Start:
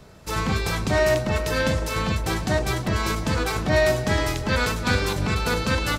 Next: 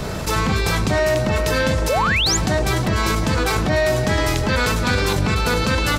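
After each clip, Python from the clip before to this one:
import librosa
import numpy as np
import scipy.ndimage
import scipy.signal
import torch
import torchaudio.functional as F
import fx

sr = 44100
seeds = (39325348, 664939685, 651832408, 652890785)

y = fx.spec_paint(x, sr, seeds[0], shape='rise', start_s=1.89, length_s=0.48, low_hz=470.0, high_hz=7500.0, level_db=-21.0)
y = fx.env_flatten(y, sr, amount_pct=70)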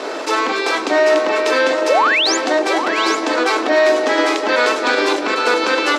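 y = scipy.signal.sosfilt(scipy.signal.ellip(4, 1.0, 50, 290.0, 'highpass', fs=sr, output='sos'), x)
y = fx.air_absorb(y, sr, metres=88.0)
y = y + 10.0 ** (-9.0 / 20.0) * np.pad(y, (int(793 * sr / 1000.0), 0))[:len(y)]
y = y * librosa.db_to_amplitude(6.0)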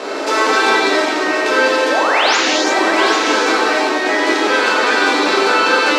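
y = fx.rider(x, sr, range_db=3, speed_s=0.5)
y = fx.rev_gated(y, sr, seeds[1], gate_ms=390, shape='flat', drr_db=-5.5)
y = y * librosa.db_to_amplitude(-3.5)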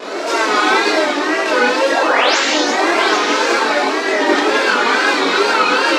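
y = fx.wow_flutter(x, sr, seeds[2], rate_hz=2.1, depth_cents=94.0)
y = fx.chorus_voices(y, sr, voices=6, hz=0.95, base_ms=23, depth_ms=3.0, mix_pct=55)
y = y * librosa.db_to_amplitude(2.5)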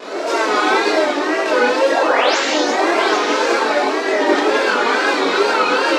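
y = fx.dynamic_eq(x, sr, hz=520.0, q=0.77, threshold_db=-27.0, ratio=4.0, max_db=5)
y = y * librosa.db_to_amplitude(-4.0)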